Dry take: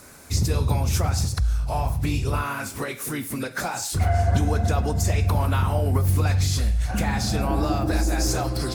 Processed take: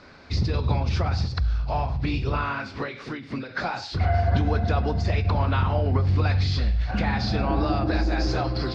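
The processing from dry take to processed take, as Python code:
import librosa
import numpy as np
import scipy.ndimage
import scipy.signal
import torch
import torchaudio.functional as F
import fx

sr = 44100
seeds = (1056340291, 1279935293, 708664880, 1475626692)

y = scipy.signal.sosfilt(scipy.signal.ellip(4, 1.0, 80, 4700.0, 'lowpass', fs=sr, output='sos'), x)
y = fx.hum_notches(y, sr, base_hz=50, count=3)
y = fx.end_taper(y, sr, db_per_s=100.0)
y = F.gain(torch.from_numpy(y), 1.0).numpy()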